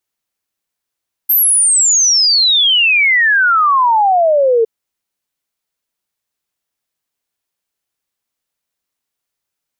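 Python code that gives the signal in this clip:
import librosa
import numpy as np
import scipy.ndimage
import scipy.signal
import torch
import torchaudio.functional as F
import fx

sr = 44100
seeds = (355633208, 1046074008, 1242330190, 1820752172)

y = fx.ess(sr, length_s=3.36, from_hz=13000.0, to_hz=440.0, level_db=-8.0)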